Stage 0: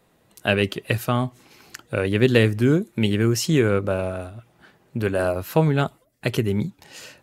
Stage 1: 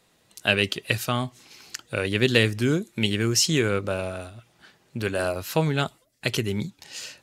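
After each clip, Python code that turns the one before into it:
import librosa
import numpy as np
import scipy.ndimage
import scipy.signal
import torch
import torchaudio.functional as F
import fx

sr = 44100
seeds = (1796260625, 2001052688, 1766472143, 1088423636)

y = fx.peak_eq(x, sr, hz=5300.0, db=11.5, octaves=2.6)
y = y * 10.0 ** (-5.0 / 20.0)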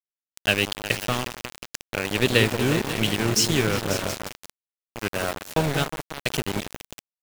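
y = fx.echo_opening(x, sr, ms=180, hz=750, octaves=2, feedback_pct=70, wet_db=-6)
y = np.where(np.abs(y) >= 10.0 ** (-22.5 / 20.0), y, 0.0)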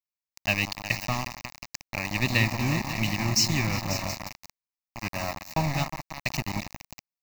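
y = fx.fixed_phaser(x, sr, hz=2200.0, stages=8)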